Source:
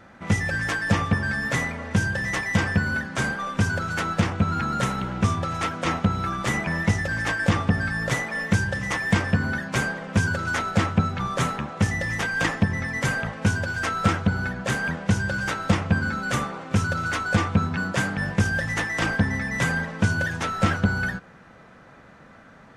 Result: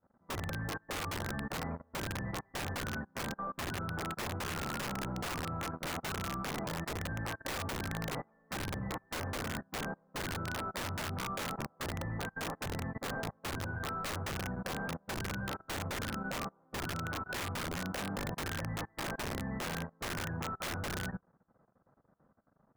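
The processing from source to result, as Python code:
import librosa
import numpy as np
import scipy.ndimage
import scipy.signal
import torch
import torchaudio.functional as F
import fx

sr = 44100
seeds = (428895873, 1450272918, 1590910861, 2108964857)

y = scipy.signal.sosfilt(scipy.signal.butter(4, 1200.0, 'lowpass', fs=sr, output='sos'), x)
y = (np.mod(10.0 ** (21.5 / 20.0) * y + 1.0, 2.0) - 1.0) / 10.0 ** (21.5 / 20.0)
y = fx.level_steps(y, sr, step_db=17)
y = fx.upward_expand(y, sr, threshold_db=-43.0, expansion=2.5)
y = F.gain(torch.from_numpy(y), -1.0).numpy()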